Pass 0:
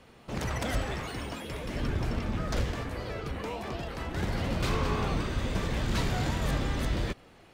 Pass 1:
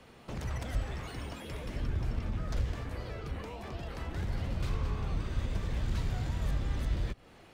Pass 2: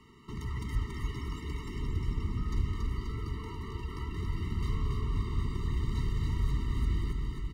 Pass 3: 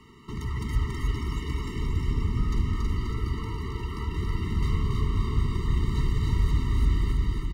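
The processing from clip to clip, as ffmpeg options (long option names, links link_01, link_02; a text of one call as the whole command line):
ffmpeg -i in.wav -filter_complex "[0:a]acrossover=split=120[link_01][link_02];[link_02]acompressor=threshold=-41dB:ratio=6[link_03];[link_01][link_03]amix=inputs=2:normalize=0" out.wav
ffmpeg -i in.wav -filter_complex "[0:a]asplit=2[link_01][link_02];[link_02]aecho=0:1:280|532|758.8|962.9|1147:0.631|0.398|0.251|0.158|0.1[link_03];[link_01][link_03]amix=inputs=2:normalize=0,afftfilt=real='re*eq(mod(floor(b*sr/1024/450),2),0)':imag='im*eq(mod(floor(b*sr/1024/450),2),0)':win_size=1024:overlap=0.75" out.wav
ffmpeg -i in.wav -af "aecho=1:1:322:0.562,volume=5dB" out.wav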